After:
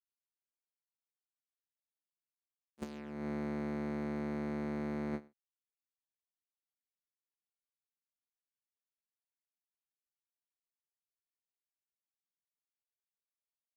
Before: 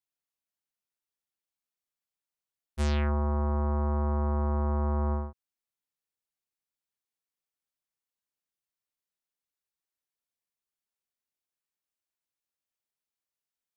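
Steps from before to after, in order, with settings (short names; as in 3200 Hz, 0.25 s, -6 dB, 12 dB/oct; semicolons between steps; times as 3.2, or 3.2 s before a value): minimum comb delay 0.45 ms; HPF 190 Hz 24 dB/oct; gate -32 dBFS, range -26 dB; low shelf 320 Hz +9.5 dB; 2.82–5.28 negative-ratio compressor -38 dBFS, ratio -0.5; gain +1 dB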